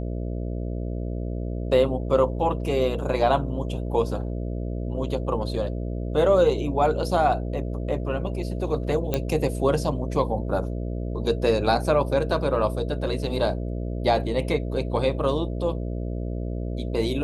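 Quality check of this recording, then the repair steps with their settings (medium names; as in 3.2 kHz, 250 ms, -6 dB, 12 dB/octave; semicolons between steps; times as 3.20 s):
buzz 60 Hz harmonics 11 -29 dBFS
9.14 s: pop -9 dBFS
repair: de-click; de-hum 60 Hz, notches 11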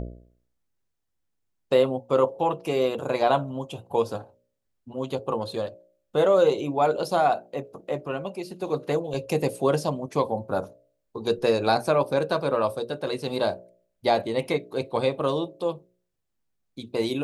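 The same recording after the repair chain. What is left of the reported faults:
nothing left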